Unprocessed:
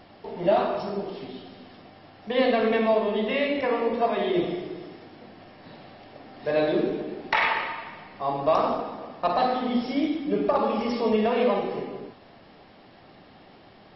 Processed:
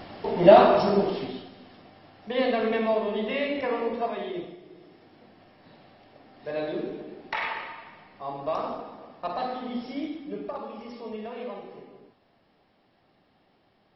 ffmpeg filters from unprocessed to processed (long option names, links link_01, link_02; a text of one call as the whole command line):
ffmpeg -i in.wav -af "volume=16.5dB,afade=type=out:start_time=1.03:duration=0.48:silence=0.281838,afade=type=out:start_time=3.83:duration=0.75:silence=0.223872,afade=type=in:start_time=4.58:duration=0.6:silence=0.375837,afade=type=out:start_time=10.02:duration=0.66:silence=0.473151" out.wav